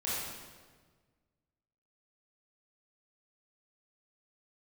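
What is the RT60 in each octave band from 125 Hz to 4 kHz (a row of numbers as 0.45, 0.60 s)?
2.0, 1.8, 1.6, 1.4, 1.3, 1.2 s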